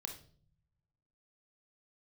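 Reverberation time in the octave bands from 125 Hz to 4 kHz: 1.6 s, 1.2 s, 0.60 s, 0.40 s, 0.35 s, 0.40 s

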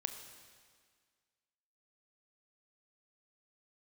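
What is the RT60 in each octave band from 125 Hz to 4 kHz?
1.7 s, 1.8 s, 1.8 s, 1.8 s, 1.8 s, 1.8 s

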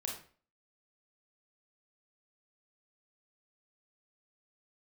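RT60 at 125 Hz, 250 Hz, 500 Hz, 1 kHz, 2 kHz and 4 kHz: 0.45 s, 0.45 s, 0.45 s, 0.40 s, 0.40 s, 0.35 s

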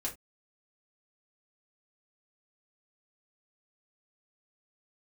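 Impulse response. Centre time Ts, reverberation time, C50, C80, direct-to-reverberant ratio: 16 ms, no single decay rate, 13.0 dB, 21.5 dB, -3.5 dB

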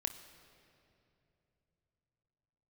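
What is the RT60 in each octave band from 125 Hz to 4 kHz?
4.9 s, 3.7 s, 3.4 s, 2.6 s, 2.4 s, 2.0 s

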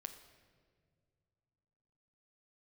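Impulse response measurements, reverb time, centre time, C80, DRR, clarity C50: no single decay rate, 17 ms, 11.0 dB, 7.0 dB, 9.5 dB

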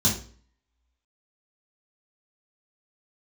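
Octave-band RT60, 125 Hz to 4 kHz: 0.50 s, 0.50 s, 0.45 s, 0.45 s, 0.40 s, 0.40 s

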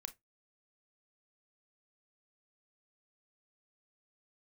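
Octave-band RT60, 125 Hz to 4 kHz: 0.30 s, 0.20 s, 0.20 s, 0.15 s, 0.15 s, 0.10 s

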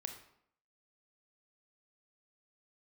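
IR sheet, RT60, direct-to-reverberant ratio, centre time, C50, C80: 0.70 s, 5.0 dB, 18 ms, 8.0 dB, 11.0 dB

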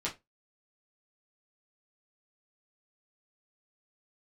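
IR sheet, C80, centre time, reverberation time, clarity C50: 23.5 dB, 17 ms, 0.20 s, 14.0 dB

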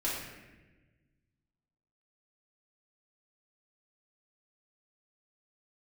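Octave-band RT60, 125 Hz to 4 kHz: 2.2 s, 1.8 s, 1.4 s, 1.0 s, 1.3 s, 0.85 s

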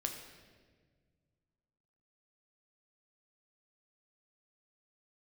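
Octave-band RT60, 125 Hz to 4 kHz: 2.7 s, 2.3 s, 1.9 s, 1.3 s, 1.4 s, 1.2 s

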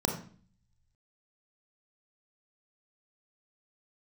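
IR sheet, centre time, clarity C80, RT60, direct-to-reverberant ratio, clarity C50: 21 ms, 11.0 dB, 0.45 s, 3.0 dB, 6.5 dB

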